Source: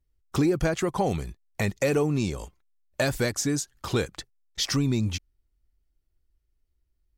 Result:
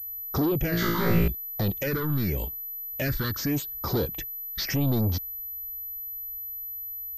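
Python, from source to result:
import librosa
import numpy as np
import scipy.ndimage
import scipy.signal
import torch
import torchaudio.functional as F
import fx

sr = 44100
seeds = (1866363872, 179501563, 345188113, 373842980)

y = 10.0 ** (-30.5 / 20.0) * np.tanh(x / 10.0 ** (-30.5 / 20.0))
y = fx.phaser_stages(y, sr, stages=6, low_hz=630.0, high_hz=2800.0, hz=0.84, feedback_pct=25)
y = fx.room_flutter(y, sr, wall_m=3.0, rt60_s=0.85, at=(0.7, 1.28))
y = fx.pwm(y, sr, carrier_hz=12000.0)
y = y * 10.0 ** (8.0 / 20.0)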